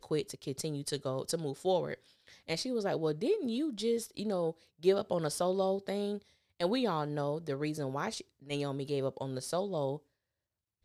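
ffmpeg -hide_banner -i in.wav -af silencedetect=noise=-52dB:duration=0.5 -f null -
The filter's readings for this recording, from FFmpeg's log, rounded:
silence_start: 9.98
silence_end: 10.85 | silence_duration: 0.86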